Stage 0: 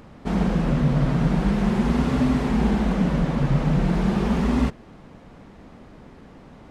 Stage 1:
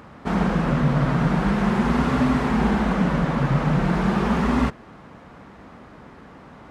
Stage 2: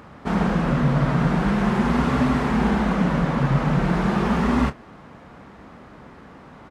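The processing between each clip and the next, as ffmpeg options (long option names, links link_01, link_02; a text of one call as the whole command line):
ffmpeg -i in.wav -af "highpass=52,equalizer=frequency=1300:width_type=o:width=1.6:gain=7.5" out.wav
ffmpeg -i in.wav -filter_complex "[0:a]asplit=2[link_01][link_02];[link_02]adelay=29,volume=-13.5dB[link_03];[link_01][link_03]amix=inputs=2:normalize=0" out.wav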